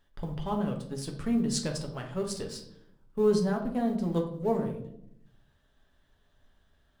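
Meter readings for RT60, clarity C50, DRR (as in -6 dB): 0.75 s, 9.0 dB, 1.5 dB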